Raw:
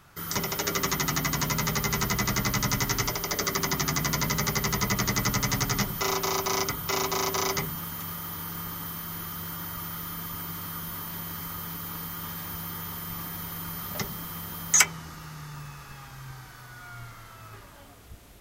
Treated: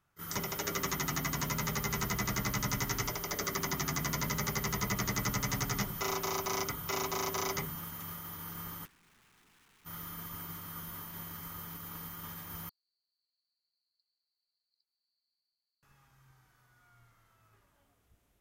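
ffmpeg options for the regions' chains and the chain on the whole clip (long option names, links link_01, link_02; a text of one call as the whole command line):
ffmpeg -i in.wav -filter_complex "[0:a]asettb=1/sr,asplit=3[link_01][link_02][link_03];[link_01]atrim=end=8.854[link_04];[link_02]atrim=start=8.85:end=9.85,asetpts=PTS-STARTPTS,afade=type=in:duration=0.004:curve=qsin,afade=type=out:start_time=0.996:duration=0.004:curve=qsin,lowpass=frequency=1600:width=0.5412,lowpass=frequency=1600:width=1.3066,aeval=exprs='(mod(79.4*val(0)+1,2)-1)/79.4':channel_layout=same,equalizer=frequency=580:width=1.8:gain=-13[link_05];[link_03]atrim=start=9.846[link_06];[link_04][link_05]acrossfade=duration=0.004:curve1=hsin:curve2=qsin[link_07];[link_07][link_06]acrossfade=duration=0.004:curve1=qsin:curve2=hsin,asettb=1/sr,asplit=3[link_08][link_09][link_10];[link_08]atrim=end=12.694[link_11];[link_09]atrim=start=12.69:end=15.83,asetpts=PTS-STARTPTS,afade=type=in:duration=0.004:curve=qsin,afade=type=out:start_time=3.136:duration=0.004:curve=qsin,acompressor=threshold=-38dB:ratio=2.5:attack=3.2:release=140:knee=1:detection=peak,asuperpass=centerf=4400:order=8:qfactor=7[link_12];[link_10]atrim=start=15.826[link_13];[link_11][link_12]acrossfade=duration=0.004:curve1=hsin:curve2=qsin[link_14];[link_14][link_13]acrossfade=duration=0.004:curve1=qsin:curve2=hsin,agate=range=-15dB:threshold=-36dB:ratio=16:detection=peak,equalizer=frequency=4400:width=2.1:gain=-3.5,volume=-6.5dB" out.wav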